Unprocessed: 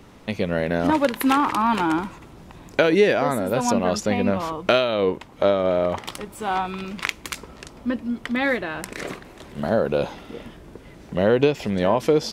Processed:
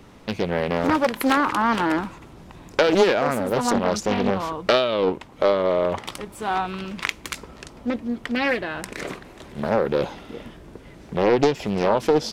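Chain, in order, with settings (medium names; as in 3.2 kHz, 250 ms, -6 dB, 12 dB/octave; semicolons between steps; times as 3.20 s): loudspeaker Doppler distortion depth 0.63 ms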